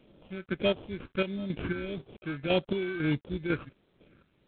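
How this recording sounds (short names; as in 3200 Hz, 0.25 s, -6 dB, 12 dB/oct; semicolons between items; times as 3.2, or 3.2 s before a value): aliases and images of a low sample rate 1900 Hz, jitter 0%; chopped level 2 Hz, depth 65%, duty 45%; phasing stages 4, 1.6 Hz, lowest notch 700–1800 Hz; G.726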